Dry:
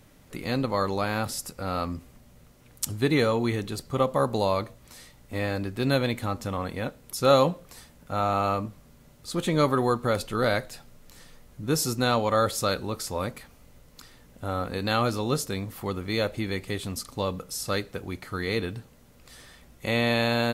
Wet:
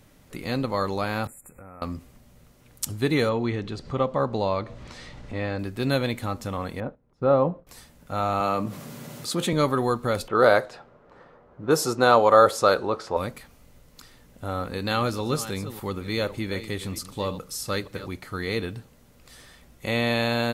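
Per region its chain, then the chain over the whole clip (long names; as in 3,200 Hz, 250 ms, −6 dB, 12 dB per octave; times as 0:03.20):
0:01.27–0:01.82: downward compressor 5 to 1, threshold −43 dBFS + linear-phase brick-wall band-stop 2,600–7,000 Hz
0:03.29–0:05.59: upward compression, threshold −28 dBFS + high-frequency loss of the air 130 metres
0:06.80–0:07.67: low-pass filter 1,100 Hz + noise gate −48 dBFS, range −12 dB
0:08.40–0:09.53: high-pass filter 120 Hz 24 dB per octave + envelope flattener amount 50%
0:10.28–0:13.17: high-pass filter 130 Hz 6 dB per octave + low-pass that shuts in the quiet parts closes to 1,500 Hz, open at −21 dBFS + flat-topped bell 730 Hz +8.5 dB 2.4 octaves
0:14.61–0:18.08: delay that plays each chunk backwards 297 ms, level −13 dB + notch filter 690 Hz, Q 10
whole clip: no processing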